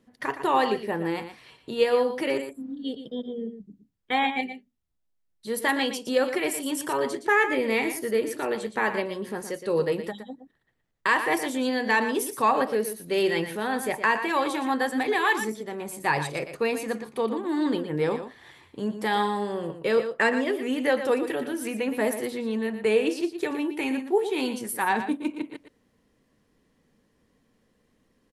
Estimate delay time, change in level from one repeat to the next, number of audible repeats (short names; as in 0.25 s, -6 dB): 0.117 s, no steady repeat, 1